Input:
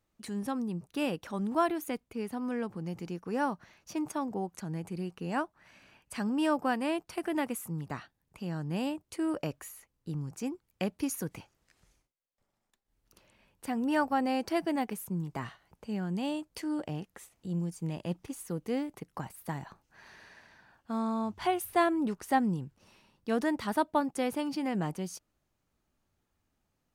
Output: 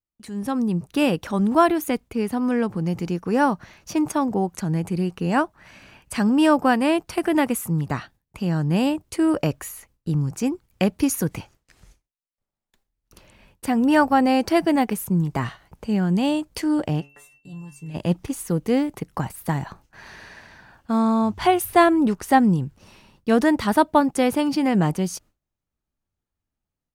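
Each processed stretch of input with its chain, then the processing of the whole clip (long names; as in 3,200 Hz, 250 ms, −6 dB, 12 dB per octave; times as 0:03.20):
0:17.00–0:17.94: steady tone 2,700 Hz −46 dBFS + stiff-string resonator 140 Hz, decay 0.3 s, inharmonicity 0.002
whole clip: noise gate with hold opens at −56 dBFS; low-shelf EQ 120 Hz +7.5 dB; automatic gain control gain up to 11 dB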